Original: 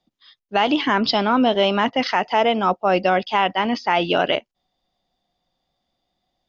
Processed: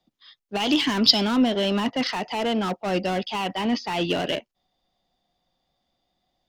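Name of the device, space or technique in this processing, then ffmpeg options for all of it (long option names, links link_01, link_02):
one-band saturation: -filter_complex "[0:a]asettb=1/sr,asplit=3[link_01][link_02][link_03];[link_01]atrim=end=0.604[link_04];[link_02]atrim=start=0.6:end=1.36,asetpts=PTS-STARTPTS,afade=type=in:duration=0.004:curve=qsin,afade=type=out:start_time=0.756:duration=0.004:curve=qsin,aemphasis=mode=production:type=75kf[link_05];[link_03]atrim=start=1.356[link_06];[link_04][link_05]acrossfade=duration=0.004:curve1=hsin:curve2=qsin[link_07];[link_07][link_06]acrossfade=duration=0.004:curve1=qsin:curve2=hsin,acrossover=split=360|3200[link_08][link_09][link_10];[link_09]asoftclip=type=tanh:threshold=-27.5dB[link_11];[link_08][link_11][link_10]amix=inputs=3:normalize=0"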